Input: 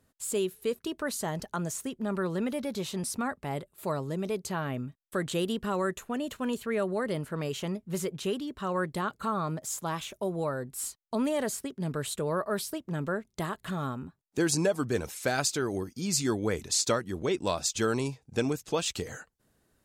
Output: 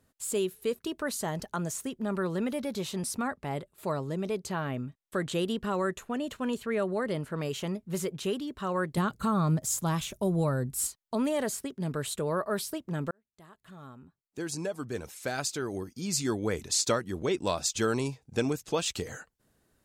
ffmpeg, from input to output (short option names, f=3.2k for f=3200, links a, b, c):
-filter_complex "[0:a]asettb=1/sr,asplit=3[a][b][c];[a]atrim=end=3.274[d];[b]atrim=start=3.27:end=7.38,asetpts=PTS-STARTPTS,afade=t=in:d=0.004:c=qsin,afade=t=out:st=4.106:d=0.004:c=qsin,highshelf=f=11k:g=-8.5[e];[c]atrim=start=7.376[f];[d][e]acrossfade=d=0.004:c1=hsin:c2=qsin[g];[g][f]acrossfade=d=0.004:c1=qsin:c2=hsin,asettb=1/sr,asplit=3[h][i][j];[h]atrim=end=8.974[k];[i]atrim=start=8.97:end=10.87,asetpts=PTS-STARTPTS,afade=t=in:d=0.004:c=qsin,afade=t=out:st=1.896:d=0.004:c=qsin,bass=f=250:g=11,treble=f=4k:g=5[l];[j]atrim=start=10.866[m];[k][l]acrossfade=d=0.004:c1=hsin:c2=qsin[n];[n][m]acrossfade=d=0.004:c1=qsin:c2=hsin,asplit=2[o][p];[o]atrim=end=13.11,asetpts=PTS-STARTPTS,afade=t=out:st=13.106:d=0.004:c=hsin[q];[p]atrim=start=13.11,asetpts=PTS-STARTPTS,afade=t=in:d=3.73[r];[q][r]concat=n=2:v=0:a=1"